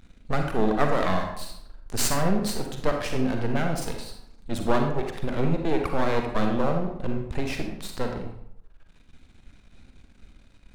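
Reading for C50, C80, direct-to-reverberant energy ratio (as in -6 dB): 4.5 dB, 7.5 dB, 3.0 dB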